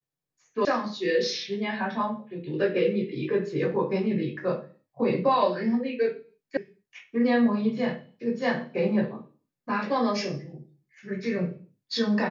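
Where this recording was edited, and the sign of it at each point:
0.65 s: sound stops dead
6.57 s: sound stops dead

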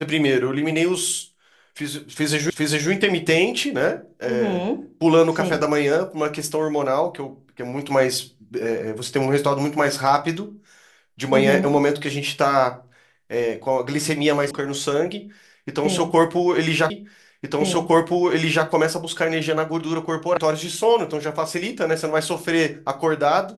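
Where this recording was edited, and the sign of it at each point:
2.50 s: repeat of the last 0.4 s
14.51 s: sound stops dead
16.90 s: repeat of the last 1.76 s
20.37 s: sound stops dead

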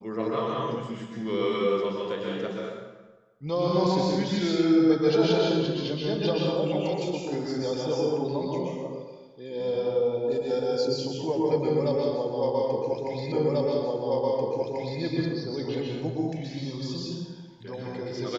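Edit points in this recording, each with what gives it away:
13.32 s: repeat of the last 1.69 s

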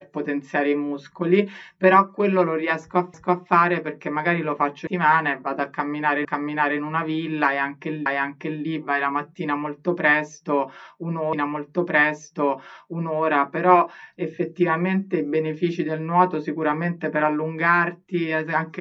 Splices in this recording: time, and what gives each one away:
3.14 s: repeat of the last 0.33 s
4.87 s: sound stops dead
6.25 s: repeat of the last 0.54 s
8.06 s: repeat of the last 0.59 s
11.33 s: repeat of the last 1.9 s

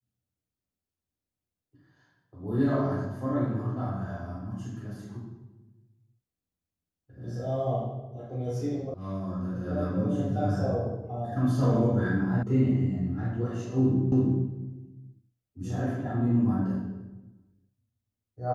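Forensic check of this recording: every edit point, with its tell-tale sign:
8.94 s: sound stops dead
12.43 s: sound stops dead
14.12 s: repeat of the last 0.33 s

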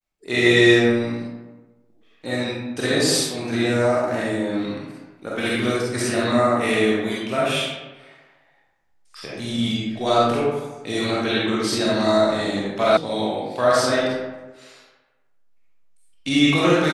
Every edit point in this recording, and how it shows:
12.97 s: sound stops dead

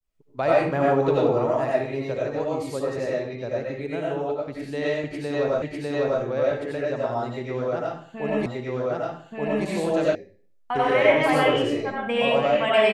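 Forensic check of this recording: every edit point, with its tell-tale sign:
5.62 s: repeat of the last 0.6 s
8.46 s: repeat of the last 1.18 s
10.15 s: sound stops dead

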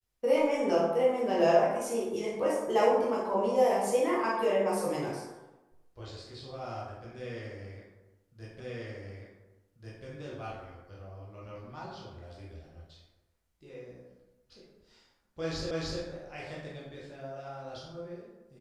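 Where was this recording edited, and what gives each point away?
8.60 s: repeat of the last 1.44 s
15.71 s: repeat of the last 0.3 s

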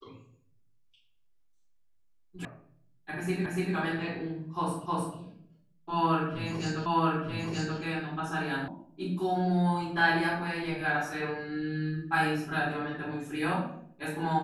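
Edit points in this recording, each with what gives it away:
2.45 s: sound stops dead
3.46 s: repeat of the last 0.29 s
4.86 s: repeat of the last 0.31 s
6.86 s: repeat of the last 0.93 s
8.68 s: sound stops dead

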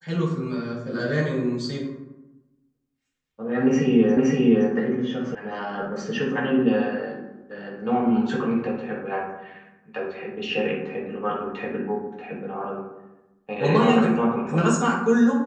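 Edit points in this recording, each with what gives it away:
4.17 s: repeat of the last 0.52 s
5.35 s: sound stops dead

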